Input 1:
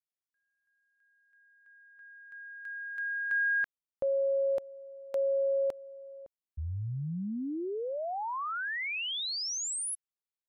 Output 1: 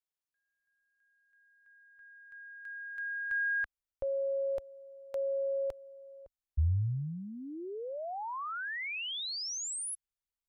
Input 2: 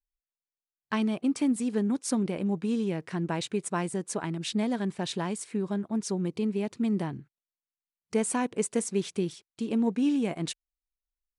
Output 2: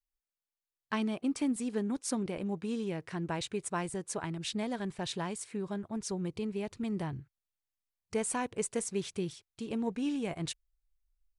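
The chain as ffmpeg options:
-af "asubboost=boost=11:cutoff=67,volume=0.708"

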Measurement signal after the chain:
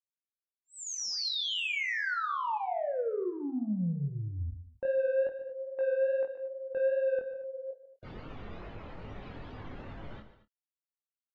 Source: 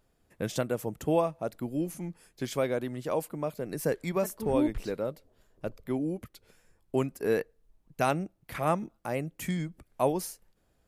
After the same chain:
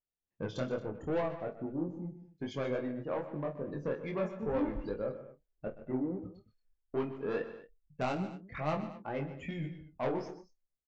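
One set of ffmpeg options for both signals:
-filter_complex "[0:a]lowpass=5600,afftdn=nr=29:nf=-41,aresample=16000,asoftclip=type=tanh:threshold=0.0596,aresample=44100,flanger=delay=19:depth=5.4:speed=2.4,asplit=2[s0][s1];[s1]adelay=28,volume=0.251[s2];[s0][s2]amix=inputs=2:normalize=0,asplit=2[s3][s4];[s4]aecho=0:1:47|125|147|227:0.15|0.178|0.168|0.133[s5];[s3][s5]amix=inputs=2:normalize=0"

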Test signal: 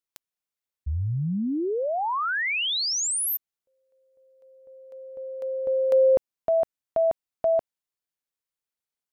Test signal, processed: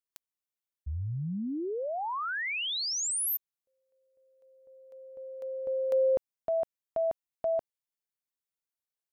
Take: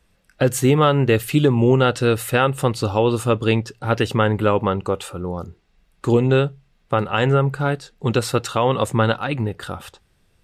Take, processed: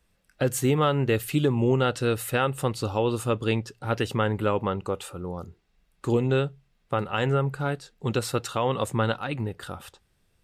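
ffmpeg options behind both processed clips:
-af "highshelf=f=8100:g=4.5,volume=0.447"

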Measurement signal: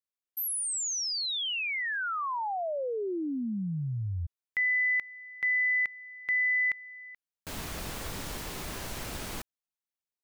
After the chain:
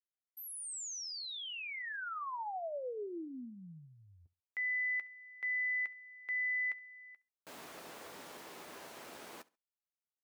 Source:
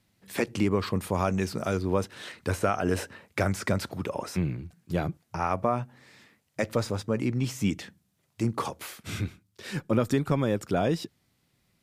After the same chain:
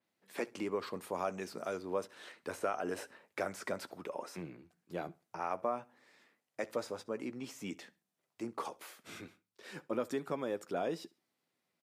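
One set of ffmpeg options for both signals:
-filter_complex "[0:a]highpass=350,highshelf=f=2200:g=-8,asplit=2[s0][s1];[s1]adelay=12,volume=0.224[s2];[s0][s2]amix=inputs=2:normalize=0,aecho=1:1:68|136:0.0708|0.0191,adynamicequalizer=threshold=0.00501:dfrequency=4300:dqfactor=0.7:tfrequency=4300:tqfactor=0.7:attack=5:release=100:ratio=0.375:range=2:mode=boostabove:tftype=highshelf,volume=0.447"

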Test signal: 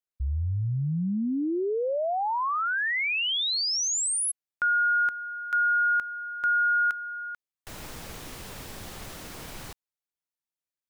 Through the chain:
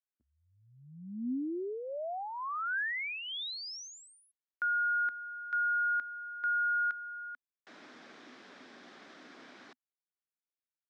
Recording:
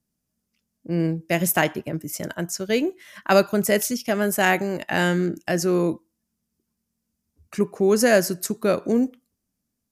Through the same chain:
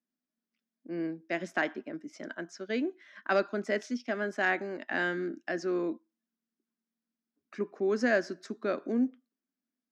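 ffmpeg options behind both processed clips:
-af "volume=2.24,asoftclip=hard,volume=0.447,highpass=f=250:w=0.5412,highpass=f=250:w=1.3066,equalizer=f=250:t=q:w=4:g=6,equalizer=f=490:t=q:w=4:g=-5,equalizer=f=900:t=q:w=4:g=-5,equalizer=f=1600:t=q:w=4:g=4,equalizer=f=2800:t=q:w=4:g=-6,equalizer=f=4400:t=q:w=4:g=-4,lowpass=f=4700:w=0.5412,lowpass=f=4700:w=1.3066,volume=0.376"

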